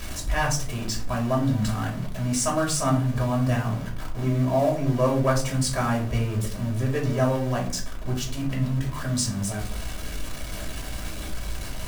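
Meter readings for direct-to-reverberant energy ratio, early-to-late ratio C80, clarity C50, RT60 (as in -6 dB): -2.0 dB, 13.0 dB, 8.5 dB, 0.55 s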